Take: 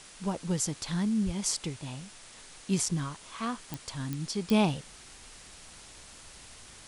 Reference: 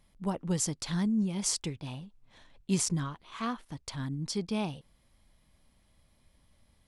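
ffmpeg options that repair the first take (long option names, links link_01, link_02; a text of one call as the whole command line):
ffmpeg -i in.wav -filter_complex "[0:a]adeclick=threshold=4,asplit=3[link_01][link_02][link_03];[link_01]afade=type=out:start_time=1.25:duration=0.02[link_04];[link_02]highpass=frequency=140:width=0.5412,highpass=frequency=140:width=1.3066,afade=type=in:start_time=1.25:duration=0.02,afade=type=out:start_time=1.37:duration=0.02[link_05];[link_03]afade=type=in:start_time=1.37:duration=0.02[link_06];[link_04][link_05][link_06]amix=inputs=3:normalize=0,afwtdn=0.004,asetnsamples=nb_out_samples=441:pad=0,asendcmd='4.5 volume volume -8dB',volume=0dB" out.wav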